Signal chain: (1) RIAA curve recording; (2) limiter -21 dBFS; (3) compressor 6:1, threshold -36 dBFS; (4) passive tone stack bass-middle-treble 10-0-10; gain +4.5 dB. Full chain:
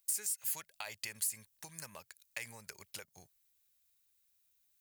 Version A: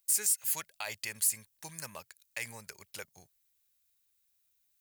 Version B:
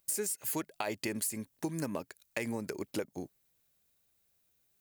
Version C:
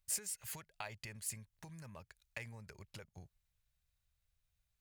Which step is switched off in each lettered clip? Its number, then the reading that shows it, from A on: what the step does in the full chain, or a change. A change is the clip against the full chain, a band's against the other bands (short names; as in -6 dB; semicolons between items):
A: 3, mean gain reduction 4.5 dB; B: 4, 250 Hz band +17.0 dB; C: 1, 125 Hz band +10.5 dB